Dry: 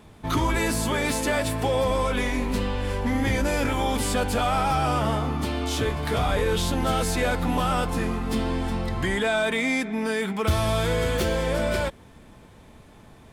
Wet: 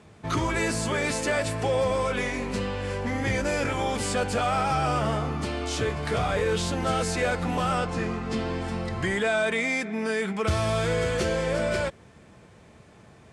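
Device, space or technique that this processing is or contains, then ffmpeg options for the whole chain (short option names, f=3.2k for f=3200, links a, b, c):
car door speaker: -filter_complex "[0:a]asettb=1/sr,asplit=3[a][b][c];[a]atrim=end=7.784[d];[b]atrim=start=7.78:end=8.61,asetpts=PTS-STARTPTS,afade=t=in:d=0.004:c=qsin,afade=t=out:st=0.826:d=0.004:c=qsin,lowpass=7.2k[e];[c]atrim=start=8.606[f];[d][e]acrossfade=d=0.004:c1=hsin:c2=qsin[g];[g][f]acrossfade=d=0.004:c1=qsin:c2=hsin,highpass=85,equalizer=f=260:t=q:w=4:g=-7,equalizer=f=920:t=q:w=4:g=-5,equalizer=f=3.5k:t=q:w=4:g=-5,lowpass=f=9k:w=0.5412,lowpass=f=9k:w=1.3066"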